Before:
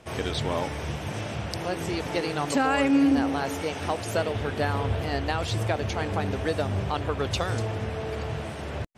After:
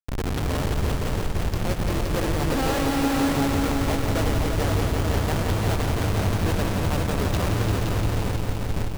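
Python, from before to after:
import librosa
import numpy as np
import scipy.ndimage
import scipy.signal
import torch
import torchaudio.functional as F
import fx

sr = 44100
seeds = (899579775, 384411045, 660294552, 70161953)

y = fx.schmitt(x, sr, flips_db=-25.5)
y = fx.echo_heads(y, sr, ms=173, heads='all three', feedback_pct=59, wet_db=-7.5)
y = y * 10.0 ** (2.0 / 20.0)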